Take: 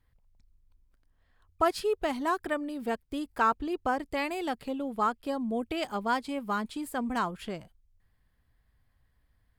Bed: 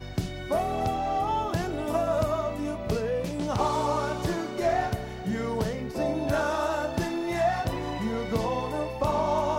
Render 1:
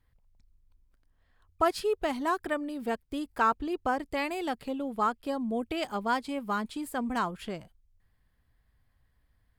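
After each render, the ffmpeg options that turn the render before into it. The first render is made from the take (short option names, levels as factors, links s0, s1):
-af anull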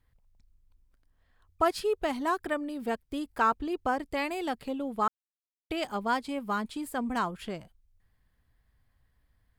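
-filter_complex "[0:a]asplit=3[s0][s1][s2];[s0]atrim=end=5.08,asetpts=PTS-STARTPTS,afade=t=out:st=5.076:d=0.004:c=hsin[s3];[s1]atrim=start=5.08:end=5.7,asetpts=PTS-STARTPTS,volume=0[s4];[s2]atrim=start=5.7,asetpts=PTS-STARTPTS,afade=t=in:d=0.004:c=hsin[s5];[s3][s4][s5]concat=n=3:v=0:a=1"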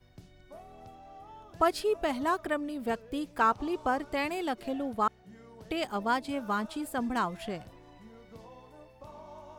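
-filter_complex "[1:a]volume=0.075[s0];[0:a][s0]amix=inputs=2:normalize=0"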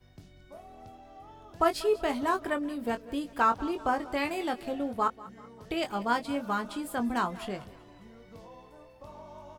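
-filter_complex "[0:a]asplit=2[s0][s1];[s1]adelay=21,volume=0.422[s2];[s0][s2]amix=inputs=2:normalize=0,aecho=1:1:191|382|573|764:0.112|0.0505|0.0227|0.0102"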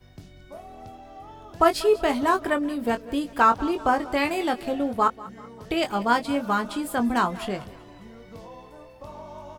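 -af "volume=2.11"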